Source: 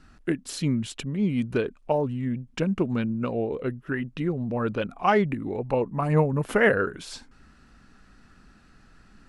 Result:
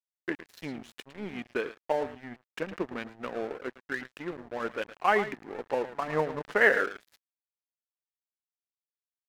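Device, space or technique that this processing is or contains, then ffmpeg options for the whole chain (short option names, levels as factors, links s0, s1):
pocket radio on a weak battery: -filter_complex "[0:a]asettb=1/sr,asplit=3[s0][s1][s2];[s0]atrim=end=5.434[s3];[s1]atrim=start=5.43:end=6.08,asetpts=PTS-STARTPTS,afade=t=in:d=0.004:c=qsin,afade=t=out:st=0.646:d=0.004:c=qsin,highpass=140[s4];[s2]atrim=start=6.076[s5];[s3][s4]acrossfade=d=0.004:c1=hsin:c2=qsin[s6];[s6][s5]acrossfade=d=0.004:c1=qsin:c2=hsin,highpass=350,lowpass=4100,aecho=1:1:110:0.282,aeval=exprs='sgn(val(0))*max(abs(val(0))-0.0126,0)':c=same,equalizer=f=1800:t=o:w=0.53:g=5.5,volume=0.75"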